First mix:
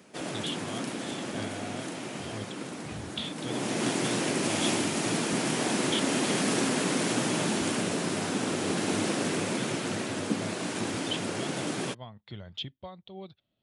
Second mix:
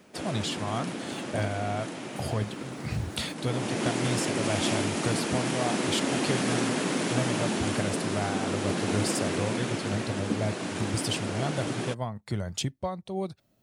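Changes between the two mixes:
speech: remove ladder low-pass 3700 Hz, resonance 70%; background: add high shelf 5000 Hz -4.5 dB

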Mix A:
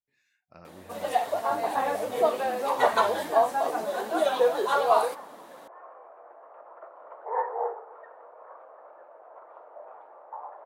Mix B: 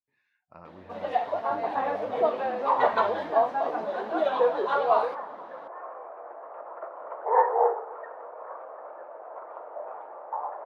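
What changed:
speech: add bell 980 Hz +10.5 dB 0.65 oct; second sound +8.5 dB; master: add air absorption 270 m

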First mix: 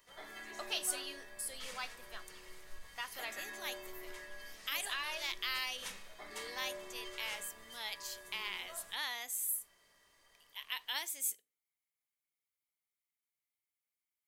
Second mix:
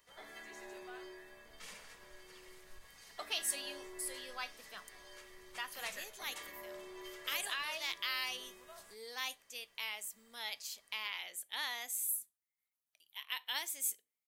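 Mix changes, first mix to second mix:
speech: entry +2.60 s; background: send -11.5 dB

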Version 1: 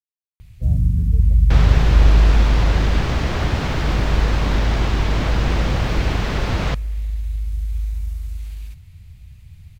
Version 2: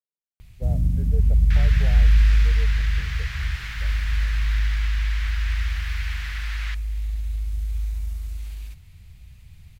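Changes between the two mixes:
speech +8.5 dB; second sound: add ladder high-pass 1500 Hz, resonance 45%; master: add bell 100 Hz -6.5 dB 1.7 oct

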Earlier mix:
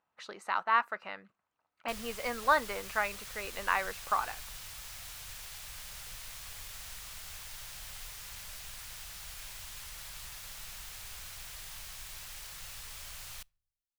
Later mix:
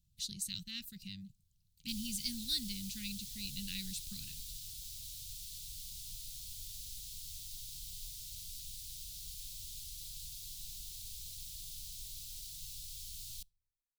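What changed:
speech: remove band-pass 1300 Hz, Q 1.1; master: add elliptic band-stop 160–3700 Hz, stop band 80 dB

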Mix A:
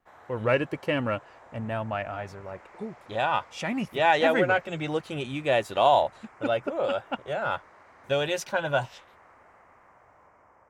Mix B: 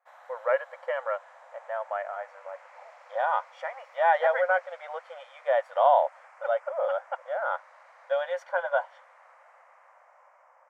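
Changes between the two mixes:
speech: add polynomial smoothing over 41 samples; master: add brick-wall FIR high-pass 490 Hz

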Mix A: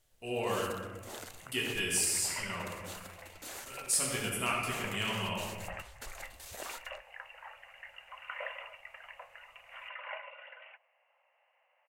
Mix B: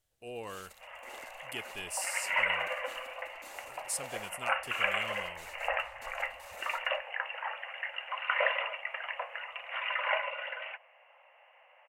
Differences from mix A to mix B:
first sound -7.5 dB; second sound +12.0 dB; reverb: off

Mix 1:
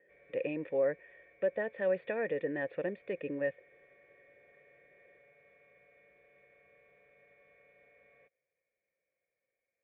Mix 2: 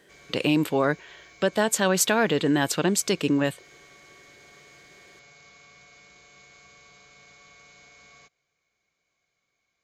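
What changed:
background -4.0 dB; master: remove vocal tract filter e

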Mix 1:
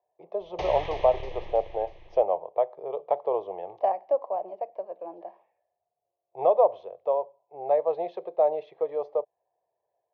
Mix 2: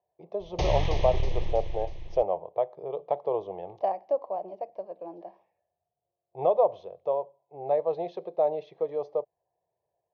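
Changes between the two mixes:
speech -3.5 dB; master: remove three-band isolator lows -13 dB, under 380 Hz, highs -13 dB, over 3200 Hz

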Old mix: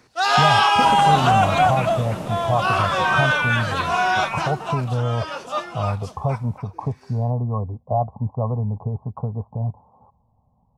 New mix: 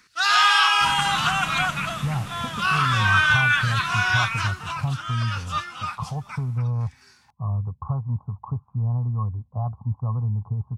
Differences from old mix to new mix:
speech: entry +1.65 s; master: add EQ curve 110 Hz 0 dB, 620 Hz -19 dB, 1300 Hz +2 dB

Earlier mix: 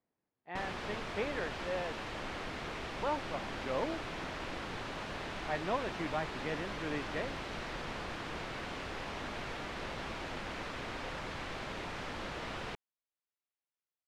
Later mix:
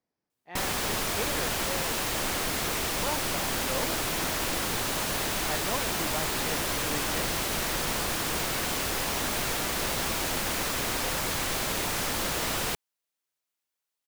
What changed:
background +9.0 dB; master: remove LPF 3000 Hz 12 dB/oct

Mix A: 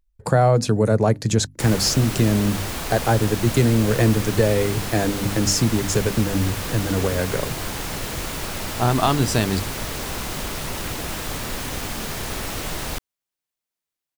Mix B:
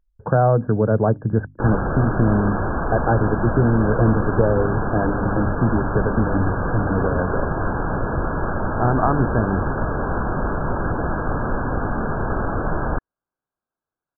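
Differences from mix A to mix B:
background +8.0 dB; master: add brick-wall FIR low-pass 1700 Hz

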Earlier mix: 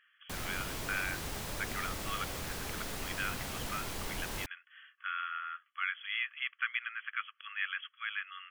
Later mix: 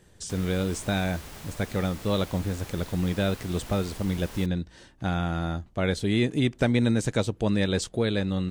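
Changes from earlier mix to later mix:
speech: remove brick-wall FIR band-pass 1100–3400 Hz; background -3.5 dB

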